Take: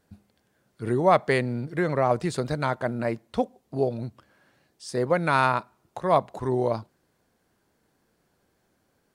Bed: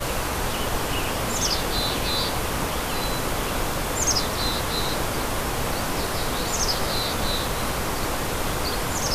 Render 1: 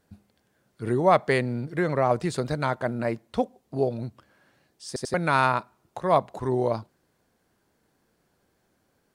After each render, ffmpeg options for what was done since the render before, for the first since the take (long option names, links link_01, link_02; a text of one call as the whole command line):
ffmpeg -i in.wav -filter_complex "[0:a]asplit=4[link_01][link_02][link_03][link_04];[link_01]atrim=end=4.962[link_05];[link_02]atrim=start=4.868:end=4.962[link_06];[link_03]atrim=start=4.868:end=4.962[link_07];[link_04]atrim=start=5.138[link_08];[link_05][link_06]acrossfade=duration=0.004:curve1=hsin:curve2=hsin[link_09];[link_09][link_07]acrossfade=duration=0.004:curve1=hsin:curve2=hsin[link_10];[link_10][link_08]acrossfade=duration=0.004:curve1=hsin:curve2=hsin" out.wav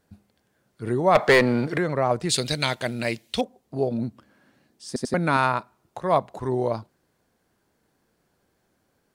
ffmpeg -i in.wav -filter_complex "[0:a]asettb=1/sr,asplit=3[link_01][link_02][link_03];[link_01]atrim=end=1.154[link_04];[link_02]atrim=start=1.15:end=1.78,asetpts=PTS-STARTPTS,afade=type=in:duration=0.004:curve=qsin,afade=type=out:start_time=0.626:duration=0.004:curve=qsin,asplit=2[link_05][link_06];[link_06]highpass=frequency=720:poles=1,volume=24dB,asoftclip=type=tanh:threshold=-6.5dB[link_07];[link_05][link_07]amix=inputs=2:normalize=0,lowpass=frequency=3700:poles=1,volume=-6dB[link_08];[link_03]atrim=start=1.776[link_09];[link_04][link_08]acrossfade=duration=0.004:curve1=hsin:curve2=qsin[link_10];[link_10][link_09]acrossfade=duration=0.004:curve1=qsin:curve2=hsin,asettb=1/sr,asplit=3[link_11][link_12][link_13];[link_11]atrim=end=2.294[link_14];[link_12]atrim=start=2.29:end=3.41,asetpts=PTS-STARTPTS,afade=type=in:duration=0.004:curve=qsin,afade=type=out:start_time=1.116:duration=0.004:curve=qsin,highshelf=frequency=1900:width_type=q:width=1.5:gain=13.5[link_15];[link_13]atrim=start=3.406[link_16];[link_14][link_15]acrossfade=duration=0.004:curve1=hsin:curve2=qsin[link_17];[link_17][link_16]acrossfade=duration=0.004:curve1=qsin:curve2=hsin,asettb=1/sr,asplit=3[link_18][link_19][link_20];[link_18]atrim=end=3.914[link_21];[link_19]atrim=start=3.91:end=5.37,asetpts=PTS-STARTPTS,afade=type=in:duration=0.004:curve=qsin,afade=type=out:start_time=1.456:duration=0.004:curve=qsin,equalizer=frequency=240:width_type=o:width=0.77:gain=9.5[link_22];[link_20]atrim=start=5.366[link_23];[link_21][link_22]acrossfade=duration=0.004:curve1=hsin:curve2=qsin[link_24];[link_24][link_23]acrossfade=duration=0.004:curve1=qsin:curve2=hsin" out.wav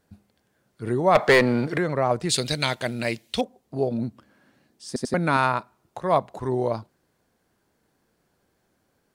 ffmpeg -i in.wav -af anull out.wav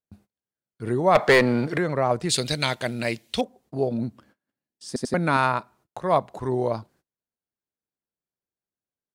ffmpeg -i in.wav -af "agate=range=-29dB:threshold=-55dB:ratio=16:detection=peak" out.wav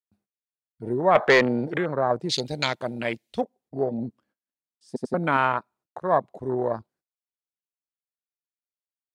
ffmpeg -i in.wav -af "afwtdn=0.0355,lowshelf=frequency=120:gain=-11" out.wav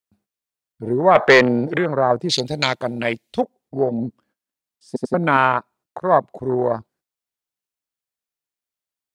ffmpeg -i in.wav -af "volume=6dB,alimiter=limit=-1dB:level=0:latency=1" out.wav